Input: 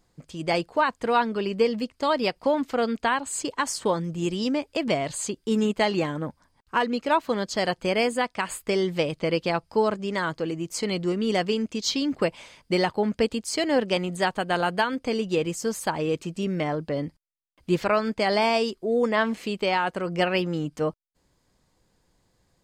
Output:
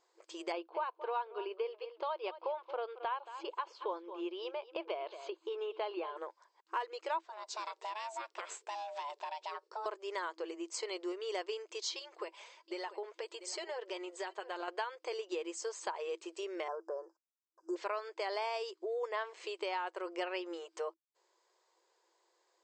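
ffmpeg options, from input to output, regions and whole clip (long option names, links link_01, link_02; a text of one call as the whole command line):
ffmpeg -i in.wav -filter_complex "[0:a]asettb=1/sr,asplit=3[link_01][link_02][link_03];[link_01]atrim=end=0.524[link_04];[link_02]atrim=start=0.52:end=6.17,asetpts=PTS-STARTPTS,afade=type=in:duration=0.004:curve=qsin,afade=type=out:start_time=5.646:duration=0.004:curve=qsin,lowpass=frequency=3400:width=0.5412,lowpass=frequency=3400:width=1.3066,equalizer=frequency=1900:width_type=o:width=0.27:gain=-14.5,aecho=1:1:224:0.141,atrim=end_sample=249165[link_05];[link_03]atrim=start=6.166[link_06];[link_04][link_05]acrossfade=duration=0.004:curve1=hsin:curve2=qsin[link_07];[link_07][link_06]acrossfade=duration=0.004:curve1=qsin:curve2=hsin,asettb=1/sr,asplit=3[link_08][link_09][link_10];[link_08]atrim=end=7.214[link_11];[link_09]atrim=start=7.21:end=9.86,asetpts=PTS-STARTPTS,afade=type=in:duration=0.004:curve=qsin,afade=type=out:start_time=2.646:duration=0.004:curve=qsin,agate=range=-33dB:threshold=-54dB:ratio=3:release=100:detection=peak,acompressor=threshold=-28dB:ratio=4:attack=3.2:release=140:knee=1:detection=peak,aeval=exprs='val(0)*sin(2*PI*430*n/s)':channel_layout=same[link_12];[link_10]atrim=start=9.856[link_13];[link_11][link_12]acrossfade=duration=0.004:curve1=hsin:curve2=qsin[link_14];[link_14][link_13]acrossfade=duration=0.004:curve1=qsin:curve2=hsin,asettb=1/sr,asplit=3[link_15][link_16][link_17];[link_15]atrim=end=11.994[link_18];[link_16]atrim=start=11.99:end=14.68,asetpts=PTS-STARTPTS,afade=type=in:duration=0.004:curve=qsin,afade=type=out:start_time=2.686:duration=0.004:curve=qsin,aecho=1:1:688:0.0891,atrim=end_sample=118629,acompressor=threshold=-24dB:ratio=2.5:attack=3.2:release=140:knee=1:detection=peak,flanger=delay=3:depth=2.2:regen=41:speed=1.5:shape=sinusoidal[link_19];[link_17]atrim=start=14.676[link_20];[link_18][link_19]acrossfade=duration=0.004:curve1=hsin:curve2=qsin[link_21];[link_21][link_20]acrossfade=duration=0.004:curve1=qsin:curve2=hsin,asettb=1/sr,asplit=3[link_22][link_23][link_24];[link_22]atrim=end=16.684[link_25];[link_23]atrim=start=16.68:end=17.76,asetpts=PTS-STARTPTS,afade=type=in:duration=0.004:curve=qsin,afade=type=out:start_time=1.076:duration=0.004:curve=qsin,asuperstop=centerf=2900:order=20:qfactor=0.85,highshelf=frequency=11000:gain=-9[link_26];[link_24]atrim=start=17.756[link_27];[link_25][link_26]acrossfade=duration=0.004:curve1=hsin:curve2=qsin[link_28];[link_28][link_27]acrossfade=duration=0.004:curve1=qsin:curve2=hsin,afftfilt=real='re*between(b*sr/4096,330,8200)':imag='im*between(b*sr/4096,330,8200)':win_size=4096:overlap=0.75,equalizer=frequency=1000:width_type=o:width=0.27:gain=7.5,acompressor=threshold=-35dB:ratio=2.5,volume=-4.5dB" out.wav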